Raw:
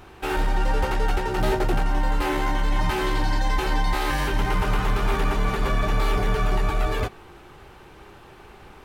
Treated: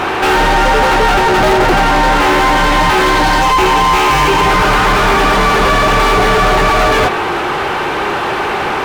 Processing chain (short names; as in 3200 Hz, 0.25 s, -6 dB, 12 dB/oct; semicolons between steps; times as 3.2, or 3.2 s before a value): 3.4–4.5 ripple EQ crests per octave 0.73, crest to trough 11 dB; overdrive pedal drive 36 dB, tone 2100 Hz, clips at -12 dBFS; gain +8.5 dB